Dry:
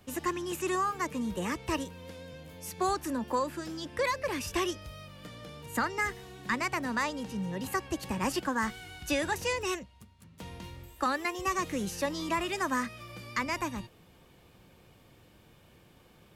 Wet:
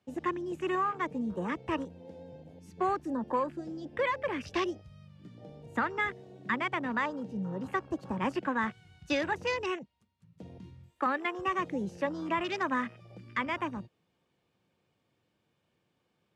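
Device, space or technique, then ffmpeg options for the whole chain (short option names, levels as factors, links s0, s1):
over-cleaned archive recording: -af "highpass=110,lowpass=7400,afwtdn=0.01"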